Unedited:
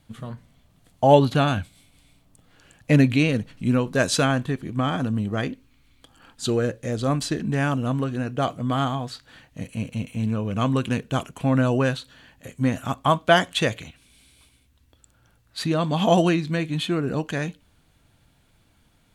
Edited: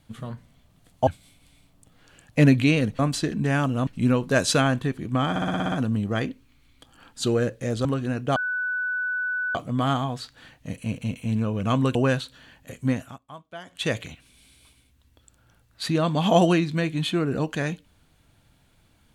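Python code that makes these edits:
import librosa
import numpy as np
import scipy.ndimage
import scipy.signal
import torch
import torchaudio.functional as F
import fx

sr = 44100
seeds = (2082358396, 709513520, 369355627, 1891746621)

y = fx.edit(x, sr, fx.cut(start_s=1.07, length_s=0.52),
    fx.stutter(start_s=4.94, slice_s=0.06, count=8),
    fx.move(start_s=7.07, length_s=0.88, to_s=3.51),
    fx.insert_tone(at_s=8.46, length_s=1.19, hz=1490.0, db=-24.0),
    fx.cut(start_s=10.86, length_s=0.85),
    fx.fade_down_up(start_s=12.59, length_s=1.17, db=-23.0, fade_s=0.35), tone=tone)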